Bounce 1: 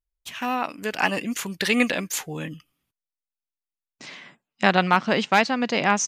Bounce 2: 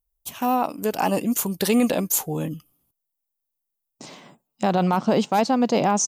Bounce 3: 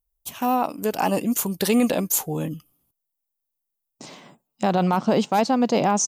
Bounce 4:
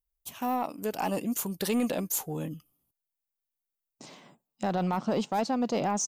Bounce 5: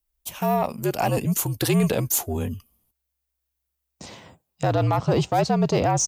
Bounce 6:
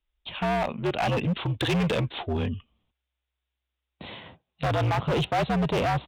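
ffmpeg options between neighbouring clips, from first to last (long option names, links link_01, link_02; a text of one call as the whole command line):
ffmpeg -i in.wav -af "firequalizer=gain_entry='entry(810,0);entry(1800,-18);entry(3000,-15);entry(13000,-8)':delay=0.05:min_phase=1,alimiter=limit=-17dB:level=0:latency=1:release=20,aemphasis=mode=production:type=75kf,volume=5.5dB" out.wav
ffmpeg -i in.wav -af anull out.wav
ffmpeg -i in.wav -af "asoftclip=type=tanh:threshold=-12dB,volume=-7dB" out.wav
ffmpeg -i in.wav -af "afreqshift=-64,volume=7.5dB" out.wav
ffmpeg -i in.wav -af "crystalizer=i=3.5:c=0,aresample=8000,aresample=44100,volume=21.5dB,asoftclip=hard,volume=-21.5dB" out.wav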